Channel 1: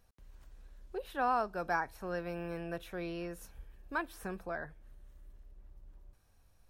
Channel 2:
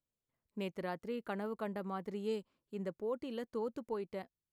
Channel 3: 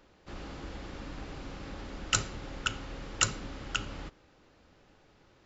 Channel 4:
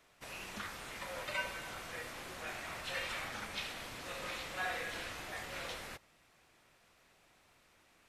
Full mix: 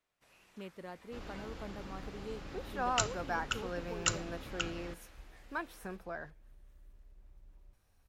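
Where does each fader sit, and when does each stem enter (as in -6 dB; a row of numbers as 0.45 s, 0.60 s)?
-3.0 dB, -7.0 dB, -4.5 dB, -18.5 dB; 1.60 s, 0.00 s, 0.85 s, 0.00 s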